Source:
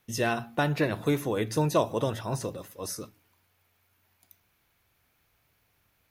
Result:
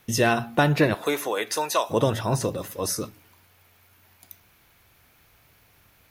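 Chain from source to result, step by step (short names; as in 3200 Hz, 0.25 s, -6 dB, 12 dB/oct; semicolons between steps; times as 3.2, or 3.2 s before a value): 0.93–1.89 HPF 440 Hz -> 1000 Hz 12 dB/oct; in parallel at +1 dB: compressor, threshold -40 dBFS, peak gain reduction 18 dB; on the sum: gain +5 dB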